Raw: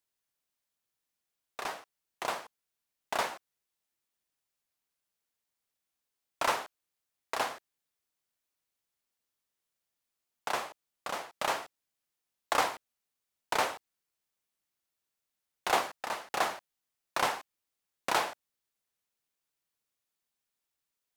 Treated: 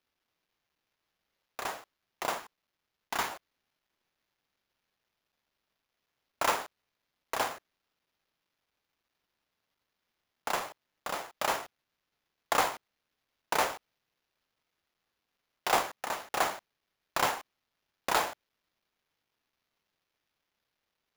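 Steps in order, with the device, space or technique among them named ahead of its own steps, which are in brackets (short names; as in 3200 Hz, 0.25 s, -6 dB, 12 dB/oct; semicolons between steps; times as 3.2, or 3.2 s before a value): 2.39–3.28 bell 570 Hz -14 dB 0.4 oct; early companding sampler (sample-rate reducer 8400 Hz, jitter 0%; companded quantiser 8-bit); gain +1 dB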